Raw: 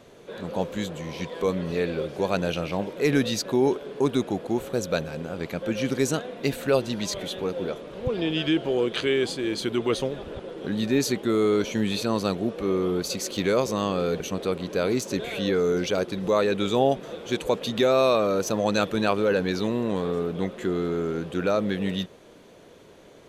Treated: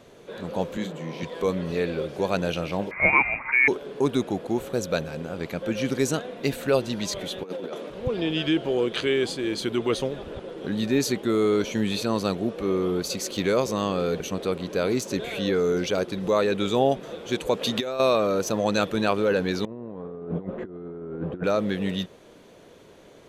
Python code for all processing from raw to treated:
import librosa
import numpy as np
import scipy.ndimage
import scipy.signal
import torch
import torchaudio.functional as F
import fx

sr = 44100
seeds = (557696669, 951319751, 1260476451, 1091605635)

y = fx.chain(x, sr, fx.highpass(hz=140.0, slope=24),
    fx.high_shelf(hz=3600.0, db=-8.5),
    fx.doubler(ms=37.0, db=-8), at=(0.77, 1.23))
y = fx.chain(y, sr, fx.peak_eq(hz=1500.0, db=10.5, octaves=1.5),
    fx.freq_invert(carrier_hz=2600), at=(2.91, 3.68))
y = fx.chain(y, sr, fx.highpass(hz=190.0, slope=24),
    fx.over_compress(threshold_db=-32.0, ratio=-0.5), at=(7.43, 7.9))
y = fx.chain(y, sr, fx.low_shelf(hz=210.0, db=-7.0),
    fx.over_compress(threshold_db=-25.0, ratio=-0.5), at=(17.59, 18.0))
y = fx.chain(y, sr, fx.lowpass(hz=1100.0, slope=12),
    fx.over_compress(threshold_db=-32.0, ratio=-0.5), at=(19.65, 21.44))